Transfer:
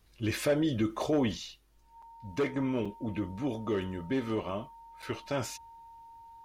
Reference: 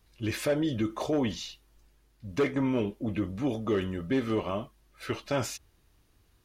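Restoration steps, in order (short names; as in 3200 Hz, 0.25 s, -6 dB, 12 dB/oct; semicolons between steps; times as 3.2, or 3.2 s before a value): notch 920 Hz, Q 30; interpolate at 2.02/2.85/5.02, 5.1 ms; gain 0 dB, from 1.37 s +3.5 dB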